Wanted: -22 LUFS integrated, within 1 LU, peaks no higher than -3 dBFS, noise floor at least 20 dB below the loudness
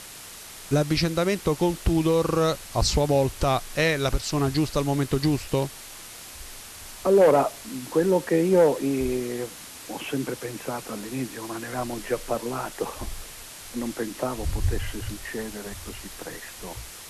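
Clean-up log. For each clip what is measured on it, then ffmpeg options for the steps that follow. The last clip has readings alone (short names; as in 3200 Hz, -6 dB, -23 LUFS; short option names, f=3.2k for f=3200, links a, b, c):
noise floor -42 dBFS; noise floor target -46 dBFS; loudness -25.5 LUFS; peak -8.0 dBFS; loudness target -22.0 LUFS
-> -af "afftdn=nr=6:nf=-42"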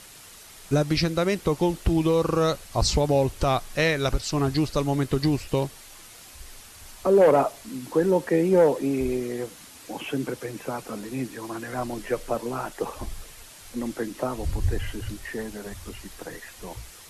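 noise floor -47 dBFS; loudness -25.5 LUFS; peak -8.0 dBFS; loudness target -22.0 LUFS
-> -af "volume=3.5dB"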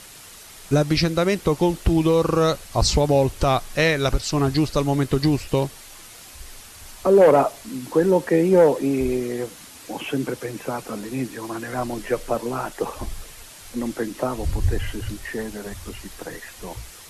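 loudness -22.0 LUFS; peak -4.5 dBFS; noise floor -43 dBFS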